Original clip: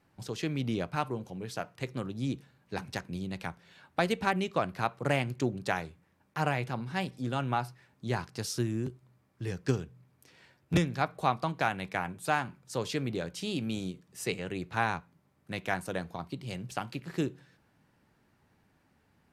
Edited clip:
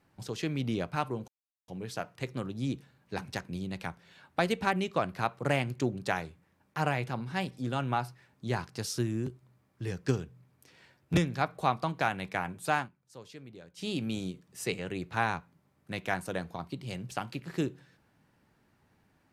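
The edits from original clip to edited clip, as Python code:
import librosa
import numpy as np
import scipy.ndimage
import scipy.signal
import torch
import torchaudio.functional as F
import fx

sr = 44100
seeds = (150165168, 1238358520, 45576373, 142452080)

y = fx.edit(x, sr, fx.insert_silence(at_s=1.28, length_s=0.4),
    fx.fade_down_up(start_s=12.37, length_s=1.11, db=-15.5, fade_s=0.12, curve='qsin'), tone=tone)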